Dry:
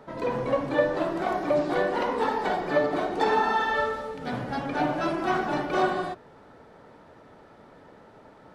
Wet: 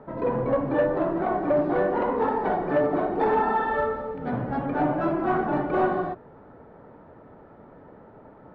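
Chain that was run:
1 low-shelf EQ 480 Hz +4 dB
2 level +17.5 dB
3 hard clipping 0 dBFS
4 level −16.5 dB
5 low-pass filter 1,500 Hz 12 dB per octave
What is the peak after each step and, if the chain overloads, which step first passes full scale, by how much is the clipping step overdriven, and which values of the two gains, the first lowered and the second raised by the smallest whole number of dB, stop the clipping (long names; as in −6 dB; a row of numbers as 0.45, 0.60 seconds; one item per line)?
−9.5, +8.0, 0.0, −16.5, −16.0 dBFS
step 2, 8.0 dB
step 2 +9.5 dB, step 4 −8.5 dB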